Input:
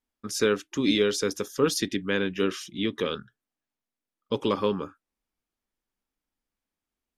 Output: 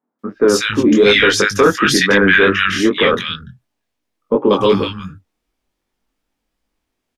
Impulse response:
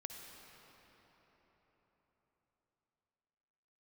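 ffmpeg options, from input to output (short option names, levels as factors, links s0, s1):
-filter_complex "[0:a]highshelf=f=5600:g=-8,acrossover=split=150|1400[s0][s1][s2];[s2]adelay=190[s3];[s0]adelay=280[s4];[s4][s1][s3]amix=inputs=3:normalize=0,flanger=delay=19.5:depth=3.4:speed=2.7,asettb=1/sr,asplit=3[s5][s6][s7];[s5]atrim=end=1.064[s8];[s6]atrim=start=1.06:end=3.15,asetpts=PTS-STARTPTS,afade=t=in:d=0.004:c=qsin,afade=t=out:st=2.086:d=0.004:c=qsin,equalizer=f=1700:t=o:w=1.1:g=14[s9];[s7]atrim=start=3.146[s10];[s8][s9]acrossfade=d=0.004:c1=hsin:c2=qsin[s11];[s11][s10]acrossfade=d=0.004:c1=qsin:c2=hsin,apsyclip=13.3,volume=0.596"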